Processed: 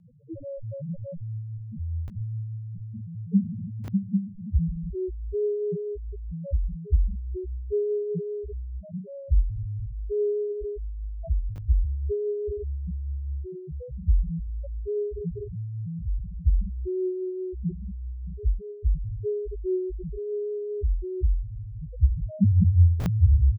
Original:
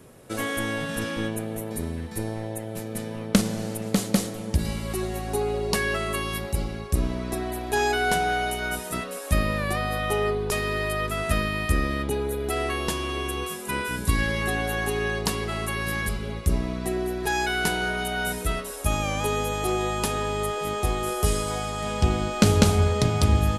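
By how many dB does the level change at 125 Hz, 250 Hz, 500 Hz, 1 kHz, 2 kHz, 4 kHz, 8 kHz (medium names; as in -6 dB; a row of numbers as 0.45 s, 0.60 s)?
+1.0 dB, -4.0 dB, -2.5 dB, under -30 dB, under -35 dB, under -30 dB, under -35 dB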